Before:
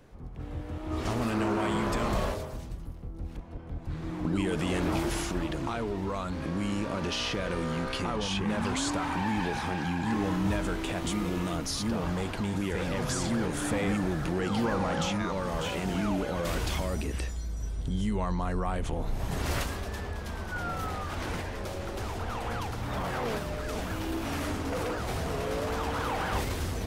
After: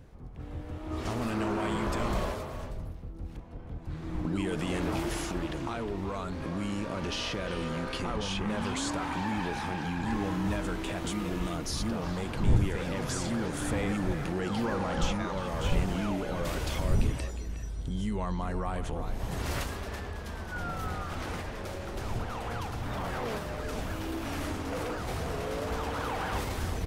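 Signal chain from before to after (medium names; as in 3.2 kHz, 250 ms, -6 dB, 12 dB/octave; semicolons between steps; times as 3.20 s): wind noise 94 Hz -35 dBFS; speakerphone echo 360 ms, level -9 dB; trim -2.5 dB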